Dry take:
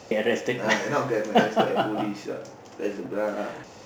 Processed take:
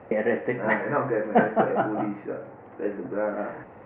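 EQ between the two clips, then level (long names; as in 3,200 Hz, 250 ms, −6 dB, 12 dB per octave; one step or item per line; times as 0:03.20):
Butterworth low-pass 2,100 Hz 36 dB per octave
0.0 dB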